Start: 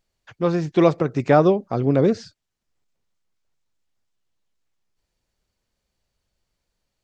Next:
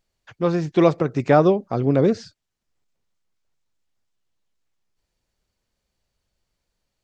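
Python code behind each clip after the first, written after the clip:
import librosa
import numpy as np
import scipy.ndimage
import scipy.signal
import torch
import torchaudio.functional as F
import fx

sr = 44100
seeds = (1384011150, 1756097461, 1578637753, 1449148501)

y = x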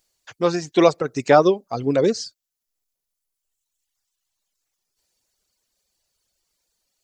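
y = fx.dereverb_blind(x, sr, rt60_s=1.8)
y = fx.bass_treble(y, sr, bass_db=-9, treble_db=12)
y = y * librosa.db_to_amplitude(3.0)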